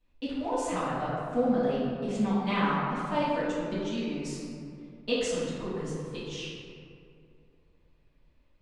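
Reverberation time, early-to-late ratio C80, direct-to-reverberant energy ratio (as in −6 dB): 2.5 s, 0.5 dB, −11.5 dB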